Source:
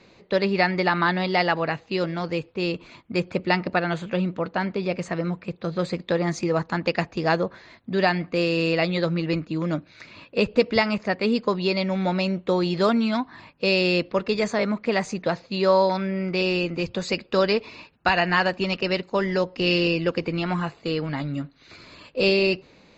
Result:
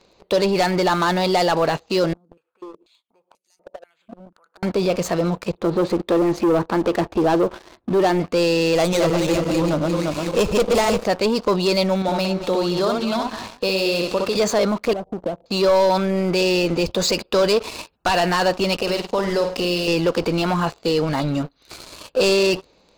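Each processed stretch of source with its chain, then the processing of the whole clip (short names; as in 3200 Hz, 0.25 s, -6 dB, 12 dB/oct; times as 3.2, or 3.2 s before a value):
2.13–4.63 compressor 12:1, threshold -36 dBFS + careless resampling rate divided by 4×, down none, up hold + stepped band-pass 4.1 Hz 230–5800 Hz
5.58–8.2 LPF 2300 Hz + bell 340 Hz +9.5 dB 0.4 oct
8.75–11.04 regenerating reverse delay 0.174 s, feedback 58%, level -4 dB + running maximum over 5 samples
12.02–14.36 compressor 2:1, threshold -38 dBFS + tapped delay 63/224/372 ms -3.5/-12.5/-17 dB
14.93–15.46 low shelf 340 Hz +2.5 dB + compressor, threshold -34 dBFS + Chebyshev low-pass 750 Hz, order 4
18.82–19.88 compressor 5:1, threshold -30 dBFS + flutter echo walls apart 8.7 m, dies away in 0.4 s
whole clip: sample leveller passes 3; limiter -15 dBFS; graphic EQ 125/250/2000 Hz -9/-6/-10 dB; gain +6 dB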